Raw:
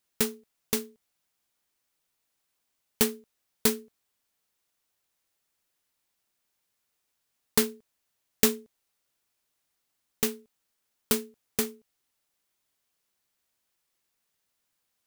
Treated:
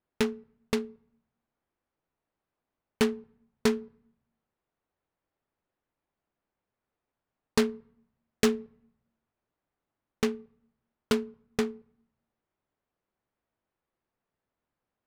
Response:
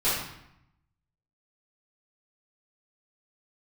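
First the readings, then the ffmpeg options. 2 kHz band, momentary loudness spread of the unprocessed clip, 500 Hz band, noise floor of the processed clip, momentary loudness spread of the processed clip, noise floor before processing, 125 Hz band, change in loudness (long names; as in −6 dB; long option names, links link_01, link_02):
+0.5 dB, 10 LU, +2.5 dB, below −85 dBFS, 14 LU, −79 dBFS, +1.5 dB, −2.0 dB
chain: -filter_complex "[0:a]asplit=2[link_01][link_02];[1:a]atrim=start_sample=2205[link_03];[link_02][link_03]afir=irnorm=-1:irlink=0,volume=-36dB[link_04];[link_01][link_04]amix=inputs=2:normalize=0,aeval=exprs='0.562*(cos(1*acos(clip(val(0)/0.562,-1,1)))-cos(1*PI/2))+0.126*(cos(5*acos(clip(val(0)/0.562,-1,1)))-cos(5*PI/2))':channel_layout=same,adynamicsmooth=sensitivity=1.5:basefreq=1300,volume=-2.5dB"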